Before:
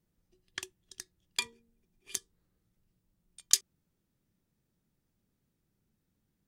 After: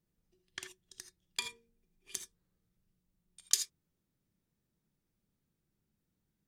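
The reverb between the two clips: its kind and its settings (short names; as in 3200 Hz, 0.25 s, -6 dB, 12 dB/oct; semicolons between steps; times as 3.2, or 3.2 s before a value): non-linear reverb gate 0.1 s rising, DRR 7.5 dB; gain -4.5 dB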